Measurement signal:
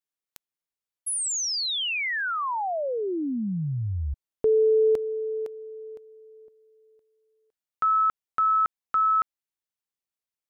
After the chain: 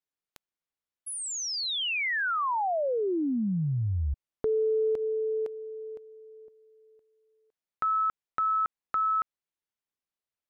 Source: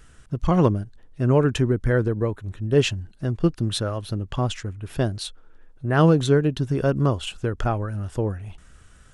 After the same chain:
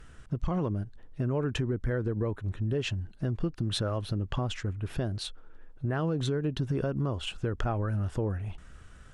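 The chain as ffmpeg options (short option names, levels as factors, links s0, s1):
-af "aemphasis=mode=reproduction:type=cd,alimiter=limit=0.2:level=0:latency=1:release=355,acompressor=threshold=0.0562:ratio=4:attack=3.4:release=125:knee=1:detection=rms"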